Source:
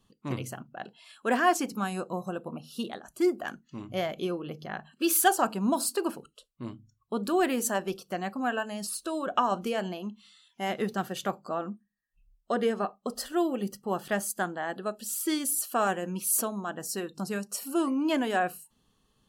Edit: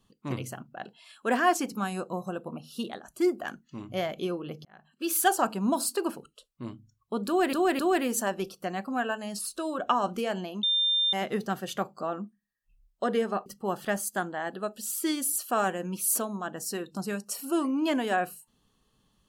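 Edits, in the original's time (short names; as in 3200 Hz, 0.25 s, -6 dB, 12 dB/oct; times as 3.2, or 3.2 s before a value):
4.65–5.35 fade in
7.27–7.53 loop, 3 plays
10.11–10.61 bleep 3600 Hz -22 dBFS
12.94–13.69 cut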